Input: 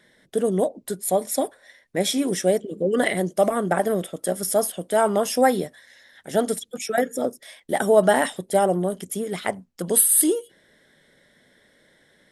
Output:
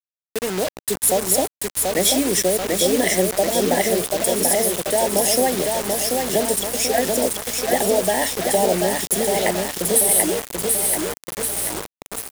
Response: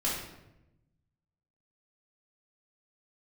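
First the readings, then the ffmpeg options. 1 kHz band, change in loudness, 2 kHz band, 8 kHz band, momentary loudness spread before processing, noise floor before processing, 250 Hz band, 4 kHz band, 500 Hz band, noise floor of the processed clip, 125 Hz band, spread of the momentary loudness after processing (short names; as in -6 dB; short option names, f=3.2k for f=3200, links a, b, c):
+1.5 dB, +3.5 dB, +3.5 dB, +7.0 dB, 11 LU, -61 dBFS, +1.5 dB, +9.5 dB, +2.0 dB, under -85 dBFS, +1.0 dB, 7 LU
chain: -filter_complex "[0:a]acrossover=split=140[a][b];[a]alimiter=level_in=16dB:limit=-24dB:level=0:latency=1:release=158,volume=-16dB[c];[c][b]amix=inputs=2:normalize=0,asuperstop=centerf=1300:order=20:qfactor=2.2,aeval=exprs='val(0)+0.0141*(sin(2*PI*60*n/s)+sin(2*PI*2*60*n/s)/2+sin(2*PI*3*60*n/s)/3+sin(2*PI*4*60*n/s)/4+sin(2*PI*5*60*n/s)/5)':c=same,highshelf=f=5.1k:g=3,acrossover=split=150[d][e];[e]acompressor=threshold=-21dB:ratio=10[f];[d][f]amix=inputs=2:normalize=0,highpass=89,dynaudnorm=f=240:g=5:m=9.5dB,asplit=2[g][h];[h]aecho=0:1:736|1472|2208|2944|3680|4416|5152|5888:0.631|0.353|0.198|0.111|0.0621|0.0347|0.0195|0.0109[i];[g][i]amix=inputs=2:normalize=0,acrusher=bits=3:mix=0:aa=0.000001,bass=f=250:g=-5,treble=f=4k:g=3,volume=-3dB"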